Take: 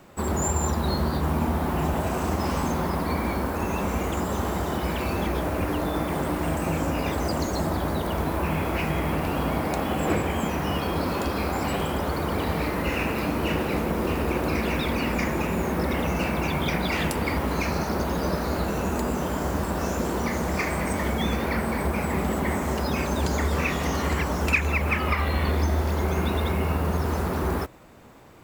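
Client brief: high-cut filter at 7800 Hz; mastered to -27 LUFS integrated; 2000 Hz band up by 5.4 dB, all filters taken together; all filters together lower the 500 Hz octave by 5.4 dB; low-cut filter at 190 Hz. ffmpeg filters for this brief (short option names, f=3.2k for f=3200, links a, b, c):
-af "highpass=190,lowpass=7.8k,equalizer=f=500:t=o:g=-7.5,equalizer=f=2k:t=o:g=7"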